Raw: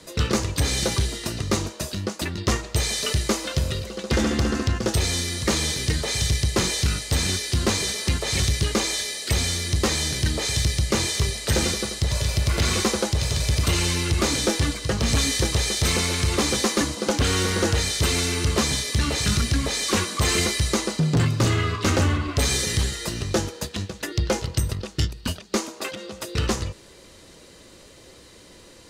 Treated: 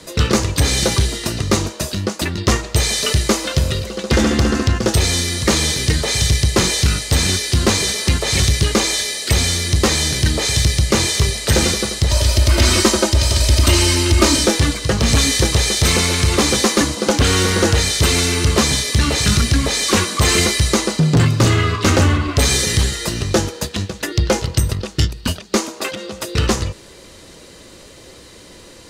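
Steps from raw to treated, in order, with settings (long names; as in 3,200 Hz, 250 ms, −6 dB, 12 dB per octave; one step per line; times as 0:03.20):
0:12.09–0:14.44: comb filter 3.2 ms, depth 76%
level +7 dB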